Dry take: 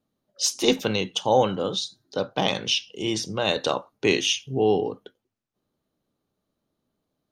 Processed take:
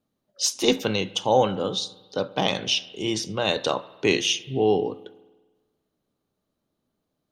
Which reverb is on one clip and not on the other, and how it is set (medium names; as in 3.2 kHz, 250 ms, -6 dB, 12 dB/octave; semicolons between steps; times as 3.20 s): spring tank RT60 1.3 s, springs 49 ms, chirp 25 ms, DRR 17.5 dB